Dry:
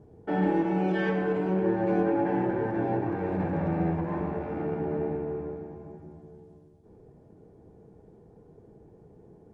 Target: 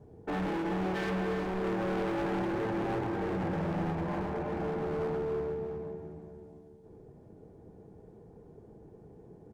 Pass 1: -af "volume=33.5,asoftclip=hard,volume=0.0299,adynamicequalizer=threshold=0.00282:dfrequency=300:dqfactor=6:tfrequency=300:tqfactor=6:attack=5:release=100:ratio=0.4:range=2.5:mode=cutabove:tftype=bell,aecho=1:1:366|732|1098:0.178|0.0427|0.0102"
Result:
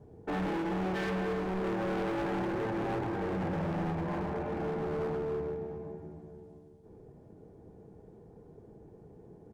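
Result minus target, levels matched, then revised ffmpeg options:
echo-to-direct -6.5 dB
-af "volume=33.5,asoftclip=hard,volume=0.0299,adynamicequalizer=threshold=0.00282:dfrequency=300:dqfactor=6:tfrequency=300:tqfactor=6:attack=5:release=100:ratio=0.4:range=2.5:mode=cutabove:tftype=bell,aecho=1:1:366|732|1098:0.376|0.0902|0.0216"

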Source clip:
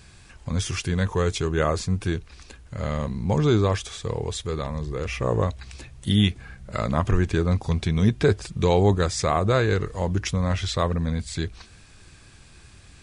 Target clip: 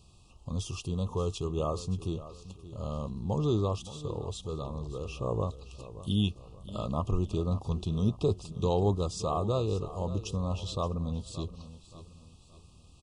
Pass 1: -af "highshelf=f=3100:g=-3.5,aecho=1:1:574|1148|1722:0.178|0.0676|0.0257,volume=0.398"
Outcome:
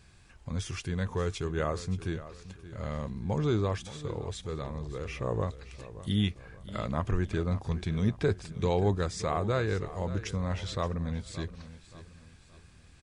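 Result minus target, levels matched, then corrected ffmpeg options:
2 kHz band +13.0 dB
-af "asuperstop=centerf=1800:order=20:qfactor=1.4,highshelf=f=3100:g=-3.5,aecho=1:1:574|1148|1722:0.178|0.0676|0.0257,volume=0.398"

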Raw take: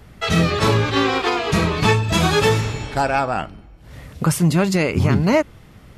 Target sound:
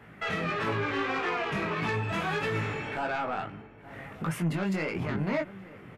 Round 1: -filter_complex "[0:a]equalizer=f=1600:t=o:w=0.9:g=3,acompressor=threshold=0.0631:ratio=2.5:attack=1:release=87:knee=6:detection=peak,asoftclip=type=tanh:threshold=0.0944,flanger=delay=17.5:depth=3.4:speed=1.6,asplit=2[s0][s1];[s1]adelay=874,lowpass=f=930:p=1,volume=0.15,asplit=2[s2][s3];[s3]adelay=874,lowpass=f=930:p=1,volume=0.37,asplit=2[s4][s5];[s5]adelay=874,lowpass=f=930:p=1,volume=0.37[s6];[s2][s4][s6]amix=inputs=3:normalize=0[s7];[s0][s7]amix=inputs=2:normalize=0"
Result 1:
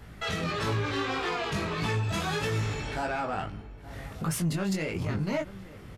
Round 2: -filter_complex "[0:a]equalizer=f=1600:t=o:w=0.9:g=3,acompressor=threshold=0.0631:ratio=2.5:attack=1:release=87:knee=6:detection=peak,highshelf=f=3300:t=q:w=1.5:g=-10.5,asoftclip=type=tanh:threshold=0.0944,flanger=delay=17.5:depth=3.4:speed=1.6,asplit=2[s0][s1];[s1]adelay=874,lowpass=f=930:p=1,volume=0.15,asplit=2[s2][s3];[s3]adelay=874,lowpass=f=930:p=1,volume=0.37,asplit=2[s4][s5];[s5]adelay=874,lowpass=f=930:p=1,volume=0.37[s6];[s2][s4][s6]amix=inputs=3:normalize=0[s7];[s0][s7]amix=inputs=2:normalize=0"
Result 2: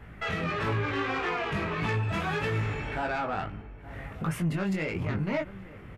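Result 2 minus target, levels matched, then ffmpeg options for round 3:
125 Hz band +2.5 dB
-filter_complex "[0:a]highpass=150,equalizer=f=1600:t=o:w=0.9:g=3,acompressor=threshold=0.0631:ratio=2.5:attack=1:release=87:knee=6:detection=peak,highshelf=f=3300:t=q:w=1.5:g=-10.5,asoftclip=type=tanh:threshold=0.0944,flanger=delay=17.5:depth=3.4:speed=1.6,asplit=2[s0][s1];[s1]adelay=874,lowpass=f=930:p=1,volume=0.15,asplit=2[s2][s3];[s3]adelay=874,lowpass=f=930:p=1,volume=0.37,asplit=2[s4][s5];[s5]adelay=874,lowpass=f=930:p=1,volume=0.37[s6];[s2][s4][s6]amix=inputs=3:normalize=0[s7];[s0][s7]amix=inputs=2:normalize=0"

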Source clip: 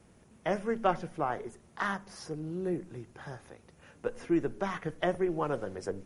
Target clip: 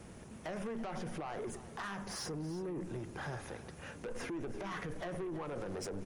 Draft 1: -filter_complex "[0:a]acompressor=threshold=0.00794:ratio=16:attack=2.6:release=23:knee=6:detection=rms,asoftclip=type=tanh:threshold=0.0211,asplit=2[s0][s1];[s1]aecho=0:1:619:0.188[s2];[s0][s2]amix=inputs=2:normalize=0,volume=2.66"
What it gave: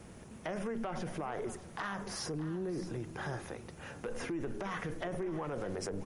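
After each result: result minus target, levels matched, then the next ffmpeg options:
echo 289 ms late; saturation: distortion -15 dB
-filter_complex "[0:a]acompressor=threshold=0.00794:ratio=16:attack=2.6:release=23:knee=6:detection=rms,asoftclip=type=tanh:threshold=0.0211,asplit=2[s0][s1];[s1]aecho=0:1:330:0.188[s2];[s0][s2]amix=inputs=2:normalize=0,volume=2.66"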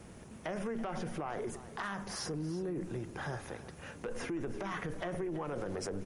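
saturation: distortion -15 dB
-filter_complex "[0:a]acompressor=threshold=0.00794:ratio=16:attack=2.6:release=23:knee=6:detection=rms,asoftclip=type=tanh:threshold=0.00631,asplit=2[s0][s1];[s1]aecho=0:1:330:0.188[s2];[s0][s2]amix=inputs=2:normalize=0,volume=2.66"

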